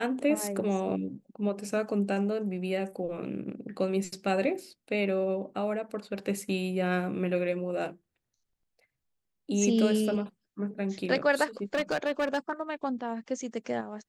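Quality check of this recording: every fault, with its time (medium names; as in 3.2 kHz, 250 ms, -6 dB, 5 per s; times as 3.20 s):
11.74–12.62 s: clipped -23.5 dBFS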